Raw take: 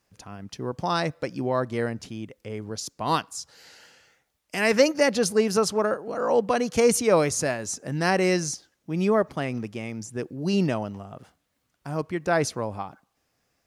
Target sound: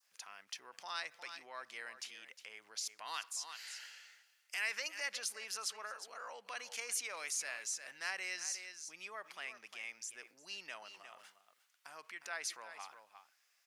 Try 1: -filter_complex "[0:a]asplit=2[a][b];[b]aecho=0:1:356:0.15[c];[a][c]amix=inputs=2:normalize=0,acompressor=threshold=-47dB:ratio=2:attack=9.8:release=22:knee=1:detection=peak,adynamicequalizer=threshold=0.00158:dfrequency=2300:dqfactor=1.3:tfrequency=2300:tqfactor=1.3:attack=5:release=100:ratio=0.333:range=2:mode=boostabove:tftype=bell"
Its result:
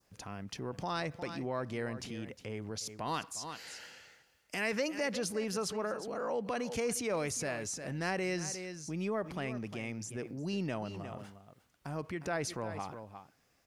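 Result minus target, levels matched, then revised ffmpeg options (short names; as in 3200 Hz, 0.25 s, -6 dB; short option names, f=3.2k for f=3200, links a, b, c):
2000 Hz band -4.0 dB
-filter_complex "[0:a]asplit=2[a][b];[b]aecho=0:1:356:0.15[c];[a][c]amix=inputs=2:normalize=0,acompressor=threshold=-47dB:ratio=2:attack=9.8:release=22:knee=1:detection=peak,adynamicequalizer=threshold=0.00158:dfrequency=2300:dqfactor=1.3:tfrequency=2300:tqfactor=1.3:attack=5:release=100:ratio=0.333:range=2:mode=boostabove:tftype=bell,highpass=1.5k"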